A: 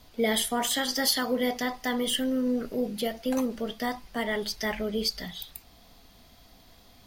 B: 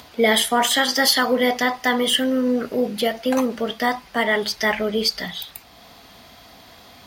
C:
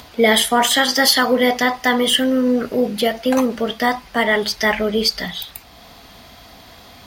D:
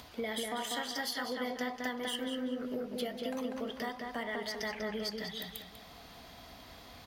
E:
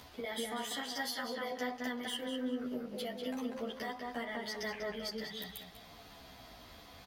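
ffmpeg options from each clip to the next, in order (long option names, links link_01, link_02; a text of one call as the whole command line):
ffmpeg -i in.wav -af "highpass=73,equalizer=frequency=1400:width=0.36:gain=7.5,acompressor=mode=upward:threshold=-45dB:ratio=2.5,volume=4.5dB" out.wav
ffmpeg -i in.wav -af "lowshelf=frequency=62:gain=10,volume=3dB" out.wav
ffmpeg -i in.wav -filter_complex "[0:a]acompressor=threshold=-29dB:ratio=3,aeval=exprs='0.224*(cos(1*acos(clip(val(0)/0.224,-1,1)))-cos(1*PI/2))+0.0178*(cos(3*acos(clip(val(0)/0.224,-1,1)))-cos(3*PI/2))':channel_layout=same,asplit=2[link_01][link_02];[link_02]adelay=194,lowpass=frequency=3300:poles=1,volume=-3dB,asplit=2[link_03][link_04];[link_04]adelay=194,lowpass=frequency=3300:poles=1,volume=0.43,asplit=2[link_05][link_06];[link_06]adelay=194,lowpass=frequency=3300:poles=1,volume=0.43,asplit=2[link_07][link_08];[link_08]adelay=194,lowpass=frequency=3300:poles=1,volume=0.43,asplit=2[link_09][link_10];[link_10]adelay=194,lowpass=frequency=3300:poles=1,volume=0.43,asplit=2[link_11][link_12];[link_12]adelay=194,lowpass=frequency=3300:poles=1,volume=0.43[link_13];[link_03][link_05][link_07][link_09][link_11][link_13]amix=inputs=6:normalize=0[link_14];[link_01][link_14]amix=inputs=2:normalize=0,volume=-8.5dB" out.wav
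ffmpeg -i in.wav -filter_complex "[0:a]asplit=2[link_01][link_02];[link_02]adelay=11.5,afreqshift=-1.3[link_03];[link_01][link_03]amix=inputs=2:normalize=1,volume=1dB" out.wav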